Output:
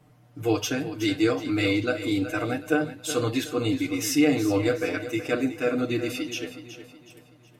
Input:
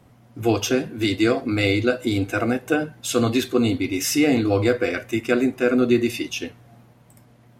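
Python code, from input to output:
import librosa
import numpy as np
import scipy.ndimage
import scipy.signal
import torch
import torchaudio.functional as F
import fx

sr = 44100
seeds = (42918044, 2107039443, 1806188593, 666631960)

p1 = x + 0.94 * np.pad(x, (int(6.6 * sr / 1000.0), 0))[:len(x)]
p2 = p1 + fx.echo_feedback(p1, sr, ms=371, feedback_pct=40, wet_db=-12.0, dry=0)
y = p2 * librosa.db_to_amplitude(-7.0)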